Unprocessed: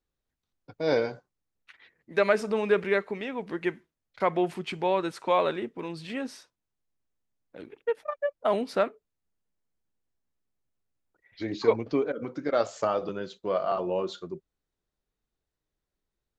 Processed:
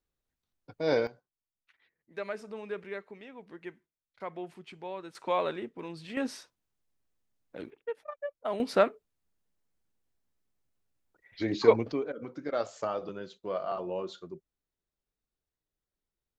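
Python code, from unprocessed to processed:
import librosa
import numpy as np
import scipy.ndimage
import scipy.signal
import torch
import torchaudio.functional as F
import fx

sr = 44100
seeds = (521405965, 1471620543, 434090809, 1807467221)

y = fx.gain(x, sr, db=fx.steps((0.0, -2.0), (1.07, -14.0), (5.15, -5.0), (6.17, 2.0), (7.7, -8.0), (8.6, 2.0), (11.92, -6.0)))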